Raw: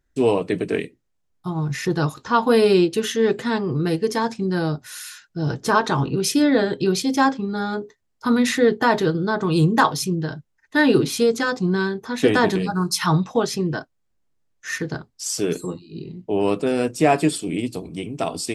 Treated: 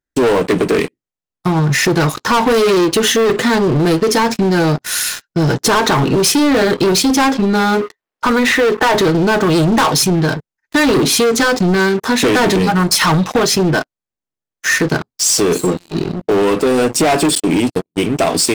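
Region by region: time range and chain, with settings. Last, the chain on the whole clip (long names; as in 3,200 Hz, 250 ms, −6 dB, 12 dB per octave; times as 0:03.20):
0:07.81–0:08.95: mu-law and A-law mismatch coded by mu + bass and treble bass −13 dB, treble −13 dB
0:17.35–0:18.01: noise gate −31 dBFS, range −35 dB + one half of a high-frequency compander decoder only
whole clip: low-shelf EQ 120 Hz −10.5 dB; leveller curve on the samples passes 5; downward compressor, threshold −11 dBFS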